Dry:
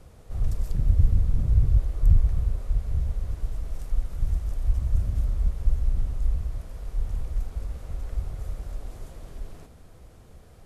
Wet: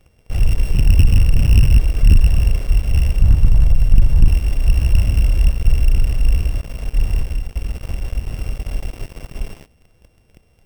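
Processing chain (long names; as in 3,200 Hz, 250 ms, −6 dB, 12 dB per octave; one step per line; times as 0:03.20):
samples sorted by size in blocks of 16 samples
0:03.20–0:04.28: low shelf with overshoot 190 Hz +10 dB, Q 1.5
0:07.21–0:08.74: downward compressor 6 to 1, threshold −28 dBFS, peak gain reduction 7.5 dB
leveller curve on the samples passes 3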